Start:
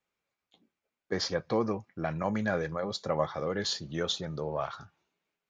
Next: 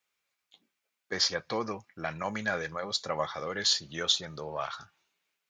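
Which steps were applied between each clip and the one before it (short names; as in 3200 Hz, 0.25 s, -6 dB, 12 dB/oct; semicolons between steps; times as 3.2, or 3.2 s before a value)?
tilt shelf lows -7.5 dB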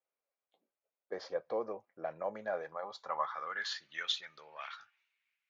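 band-pass sweep 560 Hz -> 2200 Hz, 2.37–4.1; gain +1 dB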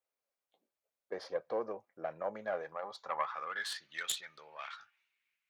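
self-modulated delay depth 0.11 ms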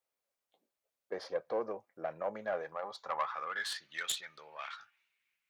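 soft clip -23 dBFS, distortion -24 dB; gain +1.5 dB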